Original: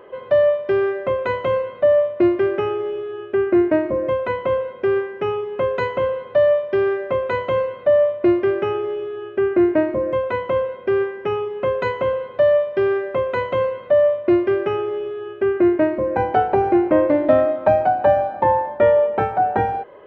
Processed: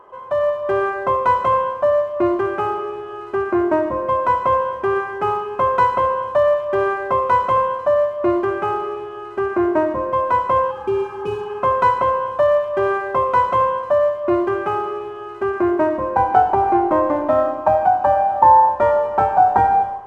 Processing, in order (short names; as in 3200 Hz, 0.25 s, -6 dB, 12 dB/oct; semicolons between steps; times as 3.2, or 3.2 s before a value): median filter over 9 samples; thin delay 1.005 s, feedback 67%, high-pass 3200 Hz, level -13 dB; on a send at -8 dB: reverb RT60 1.1 s, pre-delay 35 ms; on the sum: spectral repair 10.73–11.55, 530–2200 Hz after; high shelf 3100 Hz -10 dB; AGC gain up to 7 dB; graphic EQ 125/250/500/1000/2000 Hz -6/-5/-10/+11/-7 dB